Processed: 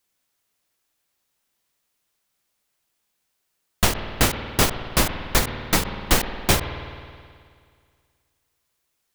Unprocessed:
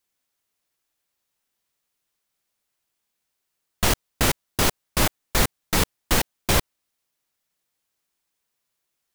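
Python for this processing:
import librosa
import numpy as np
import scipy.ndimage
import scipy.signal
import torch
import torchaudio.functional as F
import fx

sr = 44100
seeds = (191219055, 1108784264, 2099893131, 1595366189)

y = fx.rev_spring(x, sr, rt60_s=2.1, pass_ms=(53,), chirp_ms=45, drr_db=11.0)
y = fx.end_taper(y, sr, db_per_s=150.0)
y = y * librosa.db_to_amplitude(4.0)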